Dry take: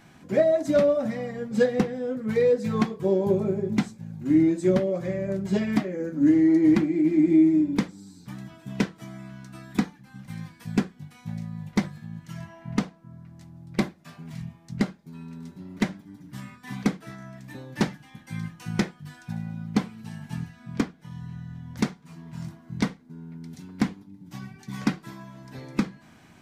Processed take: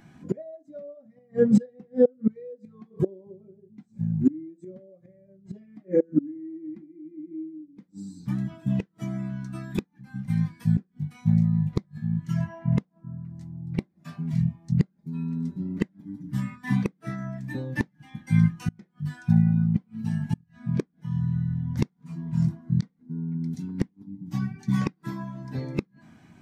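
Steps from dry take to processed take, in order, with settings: treble shelf 5.2 kHz +5 dB; inverted gate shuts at -22 dBFS, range -28 dB; spectral contrast expander 1.5:1; trim +7 dB

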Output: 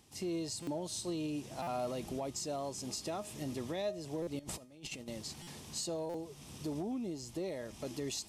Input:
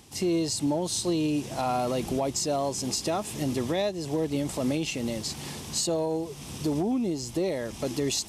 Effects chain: 4.39–5.08 s: compressor with a negative ratio -35 dBFS, ratio -0.5; feedback comb 620 Hz, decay 0.39 s, mix 60%; buffer glitch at 0.62/1.62/4.22/5.42/6.09 s, samples 256, times 8; trim -3.5 dB

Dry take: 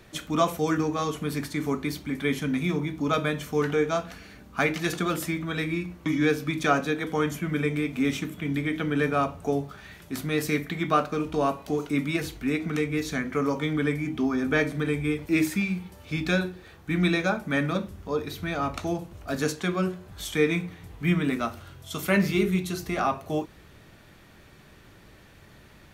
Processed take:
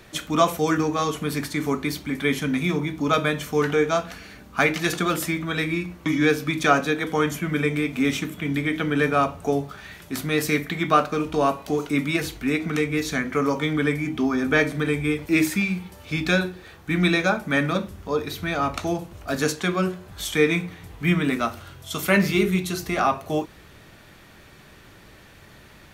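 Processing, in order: bass shelf 500 Hz -3.5 dB; trim +5.5 dB

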